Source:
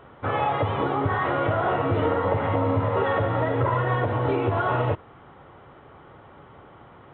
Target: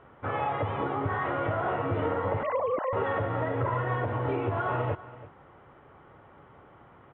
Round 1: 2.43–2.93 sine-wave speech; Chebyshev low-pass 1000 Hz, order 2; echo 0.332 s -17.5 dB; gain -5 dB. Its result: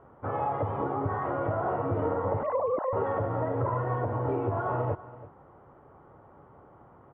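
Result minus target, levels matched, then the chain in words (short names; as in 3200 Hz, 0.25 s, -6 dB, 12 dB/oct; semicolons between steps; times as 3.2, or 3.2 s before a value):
2000 Hz band -7.5 dB
2.43–2.93 sine-wave speech; Chebyshev low-pass 2400 Hz, order 2; echo 0.332 s -17.5 dB; gain -5 dB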